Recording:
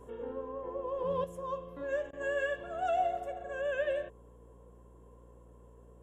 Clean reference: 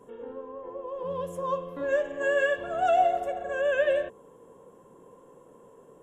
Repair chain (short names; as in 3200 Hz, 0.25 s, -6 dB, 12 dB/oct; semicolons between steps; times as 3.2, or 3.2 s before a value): de-hum 59 Hz, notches 12; interpolate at 2.11, 19 ms; gain correction +8 dB, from 1.24